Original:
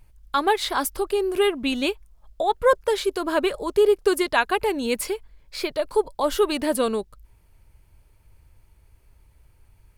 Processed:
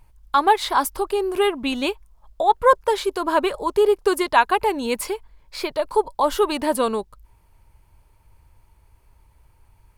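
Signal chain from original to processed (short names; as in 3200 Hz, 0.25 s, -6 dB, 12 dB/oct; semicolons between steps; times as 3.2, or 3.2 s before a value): bell 950 Hz +8.5 dB 0.63 oct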